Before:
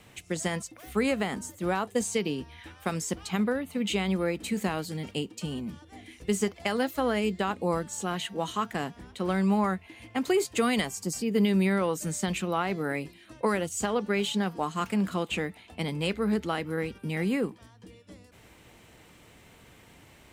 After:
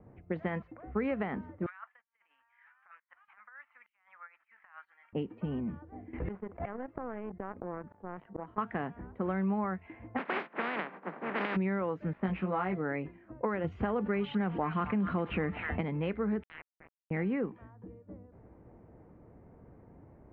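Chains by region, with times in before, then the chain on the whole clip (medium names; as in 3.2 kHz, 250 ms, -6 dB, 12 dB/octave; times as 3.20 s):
1.66–5.13 s: inverse Chebyshev high-pass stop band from 430 Hz, stop band 60 dB + compressor with a negative ratio -43 dBFS, ratio -0.5
6.13–8.58 s: inverted gate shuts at -29 dBFS, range -37 dB + waveshaping leveller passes 3 + level flattener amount 70%
10.17–11.55 s: spectral contrast reduction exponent 0.17 + steep high-pass 160 Hz 72 dB/octave
12.13–12.78 s: dead-time distortion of 0.072 ms + doubling 16 ms -3 dB
13.64–15.81 s: bass shelf 160 Hz +6 dB + repeats whose band climbs or falls 253 ms, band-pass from 1.6 kHz, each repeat 0.7 oct, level -10 dB + level flattener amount 50%
16.43–17.11 s: steep high-pass 2 kHz 48 dB/octave + word length cut 6-bit, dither none
whole clip: inverse Chebyshev low-pass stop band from 8.4 kHz, stop band 70 dB; level-controlled noise filter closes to 590 Hz, open at -24 dBFS; compression 2.5:1, threshold -33 dBFS; trim +1.5 dB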